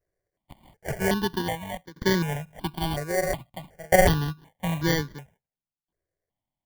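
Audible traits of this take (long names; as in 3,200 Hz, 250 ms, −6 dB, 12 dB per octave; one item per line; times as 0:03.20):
tremolo saw down 0.51 Hz, depth 95%
aliases and images of a low sample rate 1,300 Hz, jitter 0%
notches that jump at a steady rate 2.7 Hz 880–2,600 Hz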